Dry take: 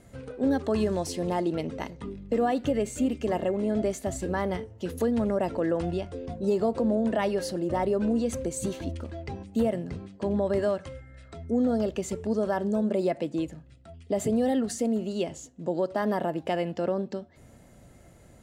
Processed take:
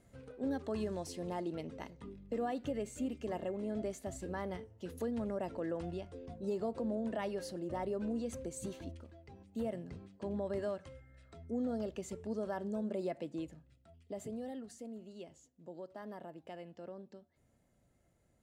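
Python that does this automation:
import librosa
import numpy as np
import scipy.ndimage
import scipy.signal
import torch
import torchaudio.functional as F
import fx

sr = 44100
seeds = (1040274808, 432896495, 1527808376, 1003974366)

y = fx.gain(x, sr, db=fx.line((8.84, -11.5), (9.23, -20.0), (9.7, -11.5), (13.55, -11.5), (14.7, -20.0)))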